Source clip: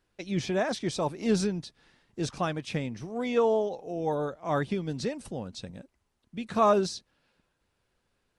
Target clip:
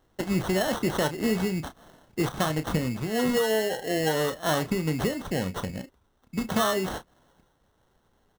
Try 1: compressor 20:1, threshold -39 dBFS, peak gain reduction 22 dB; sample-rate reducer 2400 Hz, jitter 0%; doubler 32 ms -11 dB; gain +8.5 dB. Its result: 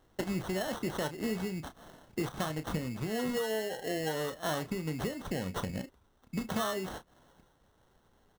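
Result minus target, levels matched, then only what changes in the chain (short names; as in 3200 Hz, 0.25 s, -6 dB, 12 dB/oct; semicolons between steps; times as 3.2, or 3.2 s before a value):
compressor: peak gain reduction +8.5 dB
change: compressor 20:1, threshold -30 dBFS, peak gain reduction 13.5 dB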